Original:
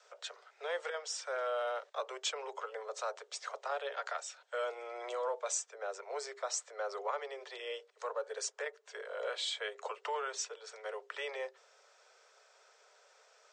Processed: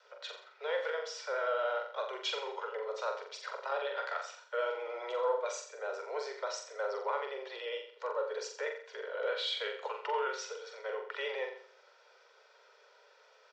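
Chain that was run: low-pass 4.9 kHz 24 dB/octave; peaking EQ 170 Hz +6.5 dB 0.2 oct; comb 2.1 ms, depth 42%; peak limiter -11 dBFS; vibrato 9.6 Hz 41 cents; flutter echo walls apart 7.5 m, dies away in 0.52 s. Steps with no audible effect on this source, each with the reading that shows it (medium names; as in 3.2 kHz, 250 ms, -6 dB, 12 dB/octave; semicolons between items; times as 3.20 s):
peaking EQ 170 Hz: input has nothing below 340 Hz; peak limiter -11 dBFS: peak at its input -23.0 dBFS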